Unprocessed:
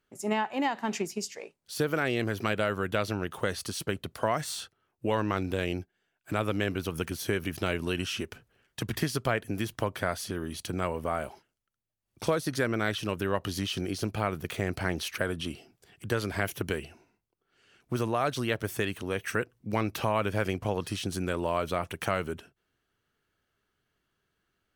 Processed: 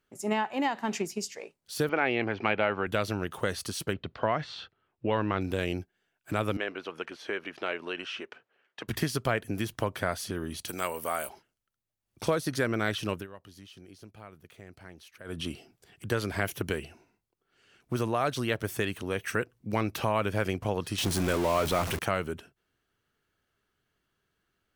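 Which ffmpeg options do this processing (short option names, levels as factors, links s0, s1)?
-filter_complex "[0:a]asettb=1/sr,asplit=3[s0][s1][s2];[s0]atrim=end=1.894[s3];[s1]atrim=start=1.89:end=2.87,asetpts=PTS-STARTPTS,afade=t=in:d=0.004:c=qsin,afade=t=out:st=0.976:d=0.004:c=qsin,highpass=120,equalizer=f=150:t=q:w=4:g=-10,equalizer=f=820:t=q:w=4:g=10,equalizer=f=2300:t=q:w=4:g=7,equalizer=f=3700:t=q:w=4:g=-5,lowpass=f=4000:w=0.5412,lowpass=f=4000:w=1.3066[s4];[s2]atrim=start=2.866[s5];[s3][s4]acrossfade=d=0.004:c1=hsin:c2=qsin[s6];[s6][s5]acrossfade=d=0.004:c1=qsin:c2=hsin,asettb=1/sr,asplit=3[s7][s8][s9];[s7]atrim=end=3.934[s10];[s8]atrim=start=3.93:end=5.41,asetpts=PTS-STARTPTS,afade=t=in:d=0.004:c=qsin,afade=t=out:st=1.476:d=0.004:c=qsin,lowpass=f=4000:w=0.5412,lowpass=f=4000:w=1.3066[s11];[s9]atrim=start=5.406[s12];[s10][s11]acrossfade=d=0.004:c1=hsin:c2=qsin[s13];[s13][s12]acrossfade=d=0.004:c1=qsin:c2=hsin,asettb=1/sr,asplit=3[s14][s15][s16];[s14]atrim=end=6.574[s17];[s15]atrim=start=6.57:end=8.88,asetpts=PTS-STARTPTS,afade=t=in:d=0.004:c=qsin,afade=t=out:st=2.306:d=0.004:c=qsin,highpass=460,lowpass=3000[s18];[s16]atrim=start=8.876[s19];[s17][s18]acrossfade=d=0.004:c1=hsin:c2=qsin[s20];[s20][s19]acrossfade=d=0.004:c1=qsin:c2=hsin,asplit=3[s21][s22][s23];[s21]afade=t=out:st=10.67:d=0.02[s24];[s22]aemphasis=mode=production:type=riaa,afade=t=in:st=10.67:d=0.02,afade=t=out:st=11.28:d=0.02[s25];[s23]afade=t=in:st=11.28:d=0.02[s26];[s24][s25][s26]amix=inputs=3:normalize=0,asettb=1/sr,asplit=3[s27][s28][s29];[s27]atrim=end=20.984[s30];[s28]atrim=start=20.98:end=21.99,asetpts=PTS-STARTPTS,afade=t=in:d=0.004:c=qsin,afade=t=out:st=1.006:d=0.004:c=qsin,aeval=exprs='val(0)+0.5*0.0376*sgn(val(0))':c=same[s31];[s29]atrim=start=21.986[s32];[s30][s31]acrossfade=d=0.004:c1=hsin:c2=qsin[s33];[s33][s32]acrossfade=d=0.004:c1=qsin:c2=hsin,asplit=3[s34][s35][s36];[s34]atrim=end=13.27,asetpts=PTS-STARTPTS,afade=t=out:st=13.13:d=0.14:silence=0.11885[s37];[s35]atrim=start=13.27:end=15.24,asetpts=PTS-STARTPTS,volume=0.119[s38];[s36]atrim=start=15.24,asetpts=PTS-STARTPTS,afade=t=in:d=0.14:silence=0.11885[s39];[s37][s38][s39]concat=n=3:v=0:a=1"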